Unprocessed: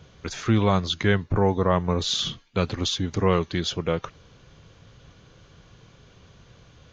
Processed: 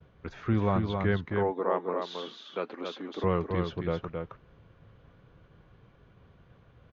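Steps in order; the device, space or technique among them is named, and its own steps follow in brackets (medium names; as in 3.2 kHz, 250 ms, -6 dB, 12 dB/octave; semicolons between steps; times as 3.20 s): hearing-loss simulation (low-pass 1.9 kHz 12 dB/octave; expander -51 dBFS); 1.25–3.24 s: high-pass 280 Hz 24 dB/octave; delay 268 ms -5 dB; trim -6 dB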